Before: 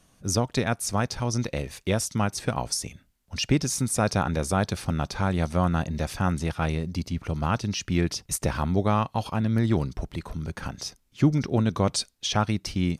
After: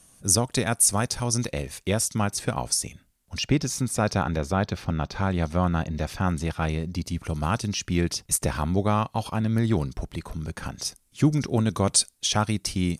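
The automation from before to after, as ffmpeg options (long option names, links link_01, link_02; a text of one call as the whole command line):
ffmpeg -i in.wav -af "asetnsamples=nb_out_samples=441:pad=0,asendcmd='1.51 equalizer g 6.5;3.39 equalizer g -3.5;4.38 equalizer g -13;5.14 equalizer g -4.5;6.27 equalizer g 1.5;7.06 equalizer g 12.5;7.68 equalizer g 6.5;10.85 equalizer g 14',equalizer=frequency=9700:width_type=o:width=1:gain=15" out.wav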